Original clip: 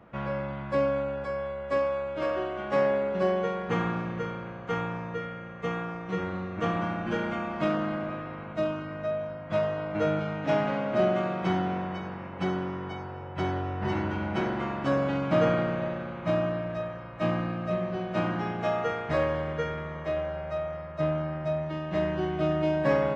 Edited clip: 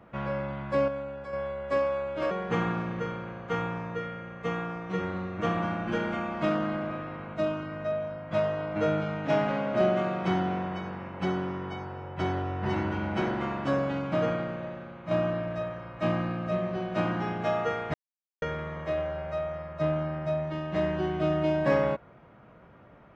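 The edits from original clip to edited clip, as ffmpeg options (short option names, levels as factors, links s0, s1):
-filter_complex "[0:a]asplit=7[s0][s1][s2][s3][s4][s5][s6];[s0]atrim=end=0.882[s7];[s1]atrim=start=0.878:end=1.332,asetpts=PTS-STARTPTS,volume=0.501[s8];[s2]atrim=start=1.328:end=2.312[s9];[s3]atrim=start=3.498:end=16.3,asetpts=PTS-STARTPTS,afade=t=out:st=11.242:d=1.56:c=qua:silence=0.446684[s10];[s4]atrim=start=16.3:end=19.13,asetpts=PTS-STARTPTS,afade=t=in:d=0.004:c=hsin:silence=0.446684,afade=t=out:st=2.826:d=0.004:c=hsin[s11];[s5]atrim=start=19.13:end=19.61,asetpts=PTS-STARTPTS,volume=0[s12];[s6]atrim=start=19.61,asetpts=PTS-STARTPTS,afade=t=in:d=0.004:c=hsin[s13];[s7][s8]acrossfade=d=0.004:c1=hsin:c2=hsin[s14];[s14][s9]acrossfade=d=0.004:c1=hsin:c2=hsin[s15];[s10][s11][s12][s13]concat=n=4:v=0:a=1[s16];[s15][s16]acrossfade=d=0.004:c1=hsin:c2=hsin"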